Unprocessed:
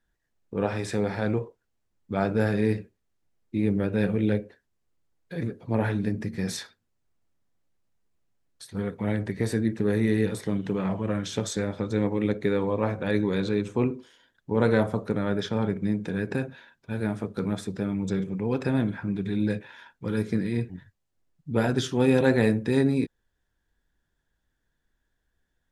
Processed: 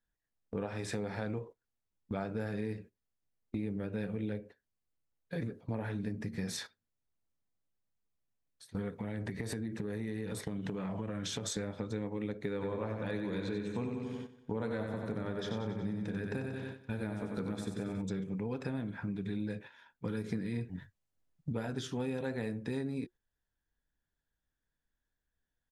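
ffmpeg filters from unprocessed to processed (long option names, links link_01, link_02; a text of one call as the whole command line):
ffmpeg -i in.wav -filter_complex "[0:a]asettb=1/sr,asplit=3[link_01][link_02][link_03];[link_01]atrim=end=8.934[link_04];[link_02]atrim=start=8.93:end=11.48,asetpts=PTS-STARTPTS,afade=type=in:duration=0.004:curve=qsin,afade=type=out:start_time=2.546:duration=0.004:curve=qsin,acompressor=threshold=-29dB:ratio=6:attack=3.2:release=140:knee=1:detection=peak[link_05];[link_03]atrim=start=11.476[link_06];[link_04][link_05]acrossfade=duration=0.004:curve1=hsin:curve2=qsin[link_07];[link_07][link_06]acrossfade=duration=0.004:curve1=qsin:curve2=hsin,asplit=3[link_08][link_09][link_10];[link_08]afade=type=out:start_time=12.6:duration=0.02[link_11];[link_09]aecho=1:1:92|184|276|368|460|552|644|736:0.531|0.313|0.185|0.109|0.0643|0.038|0.0224|0.0132,afade=type=in:start_time=12.6:duration=0.02,afade=type=out:start_time=18.01:duration=0.02[link_12];[link_10]afade=type=in:start_time=18.01:duration=0.02[link_13];[link_11][link_12][link_13]amix=inputs=3:normalize=0,asettb=1/sr,asplit=3[link_14][link_15][link_16];[link_14]atrim=end=20.244[link_17];[link_15]atrim=start=20.24:end=21.53,asetpts=PTS-STARTPTS,afade=type=in:duration=0.004:curve=qsin,afade=type=out:start_time=1.286:duration=0.004:curve=qsin,acontrast=36[link_18];[link_16]atrim=start=21.526[link_19];[link_17][link_18]acrossfade=duration=0.004:curve1=hsin:curve2=qsin[link_20];[link_20][link_19]acrossfade=duration=0.004:curve1=qsin:curve2=hsin,bandreject=frequency=360:width=12,agate=range=-11dB:threshold=-40dB:ratio=16:detection=peak,acompressor=threshold=-34dB:ratio=6" out.wav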